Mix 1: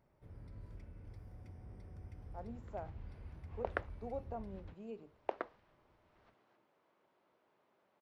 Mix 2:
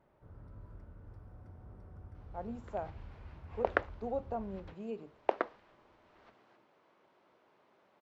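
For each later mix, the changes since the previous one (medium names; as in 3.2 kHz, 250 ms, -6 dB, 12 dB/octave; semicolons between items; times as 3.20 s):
speech +6.5 dB; first sound: add resonant high shelf 1.8 kHz -9.5 dB, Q 3; second sound +8.0 dB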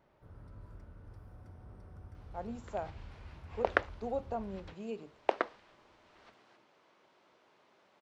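master: add treble shelf 2.8 kHz +11 dB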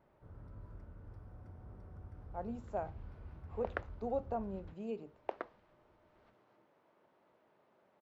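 second sound -9.5 dB; master: add treble shelf 2.8 kHz -11 dB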